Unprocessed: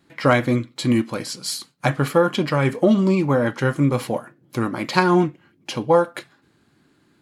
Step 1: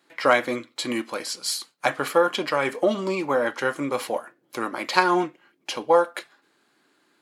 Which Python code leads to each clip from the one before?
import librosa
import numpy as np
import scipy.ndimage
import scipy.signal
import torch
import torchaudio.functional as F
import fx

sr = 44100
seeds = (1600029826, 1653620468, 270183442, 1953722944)

y = scipy.signal.sosfilt(scipy.signal.butter(2, 450.0, 'highpass', fs=sr, output='sos'), x)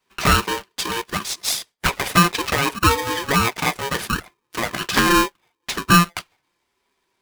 y = fx.leveller(x, sr, passes=2)
y = fx.env_flanger(y, sr, rest_ms=6.8, full_db=-9.5)
y = y * np.sign(np.sin(2.0 * np.pi * 690.0 * np.arange(len(y)) / sr))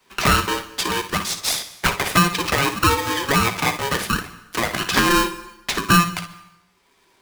y = fx.room_early_taps(x, sr, ms=(55, 65), db=(-12.5, -15.0))
y = fx.rev_plate(y, sr, seeds[0], rt60_s=0.77, hf_ratio=0.9, predelay_ms=110, drr_db=19.0)
y = fx.band_squash(y, sr, depth_pct=40)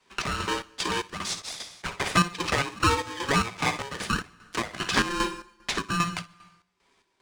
y = scipy.signal.savgol_filter(x, 9, 4, mode='constant')
y = fx.chopper(y, sr, hz=2.5, depth_pct=65, duty_pct=55)
y = F.gain(torch.from_numpy(y), -5.0).numpy()